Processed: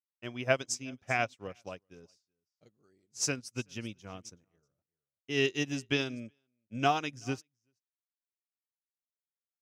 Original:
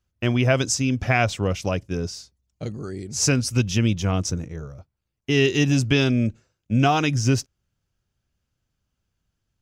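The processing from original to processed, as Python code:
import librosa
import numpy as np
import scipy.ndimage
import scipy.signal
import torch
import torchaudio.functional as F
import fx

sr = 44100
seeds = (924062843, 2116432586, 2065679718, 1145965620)

y = fx.highpass(x, sr, hz=310.0, slope=6)
y = y + 10.0 ** (-18.0 / 20.0) * np.pad(y, (int(379 * sr / 1000.0), 0))[:len(y)]
y = fx.upward_expand(y, sr, threshold_db=-40.0, expansion=2.5)
y = y * 10.0 ** (-4.0 / 20.0)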